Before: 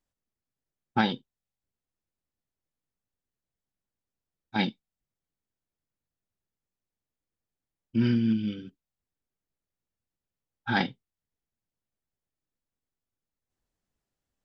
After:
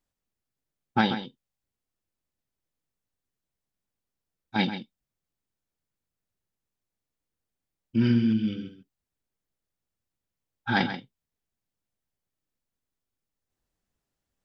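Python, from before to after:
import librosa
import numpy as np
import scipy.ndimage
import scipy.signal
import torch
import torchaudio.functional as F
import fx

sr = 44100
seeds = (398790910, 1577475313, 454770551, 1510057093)

y = x + 10.0 ** (-10.5 / 20.0) * np.pad(x, (int(134 * sr / 1000.0), 0))[:len(x)]
y = F.gain(torch.from_numpy(y), 1.5).numpy()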